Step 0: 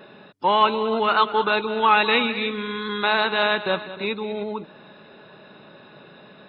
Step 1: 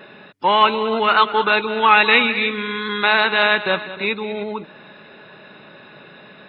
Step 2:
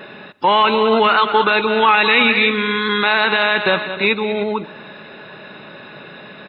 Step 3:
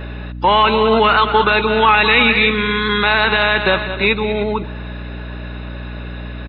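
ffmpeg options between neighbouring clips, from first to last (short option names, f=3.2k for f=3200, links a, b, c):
-af "equalizer=f=2.1k:w=1.3:g=7,volume=2dB"
-af "alimiter=limit=-10dB:level=0:latency=1:release=31,aecho=1:1:116|232|348|464:0.0708|0.0411|0.0238|0.0138,volume=6dB"
-af "aeval=exprs='val(0)+0.0398*(sin(2*PI*60*n/s)+sin(2*PI*2*60*n/s)/2+sin(2*PI*3*60*n/s)/3+sin(2*PI*4*60*n/s)/4+sin(2*PI*5*60*n/s)/5)':c=same,aresample=11025,aresample=44100,volume=1dB"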